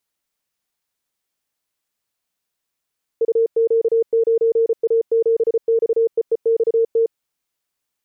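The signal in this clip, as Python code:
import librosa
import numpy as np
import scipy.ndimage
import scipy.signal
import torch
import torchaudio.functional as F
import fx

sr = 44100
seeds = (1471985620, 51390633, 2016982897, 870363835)

y = fx.morse(sr, text='UQ9A7XEEXT', wpm=34, hz=456.0, level_db=-12.5)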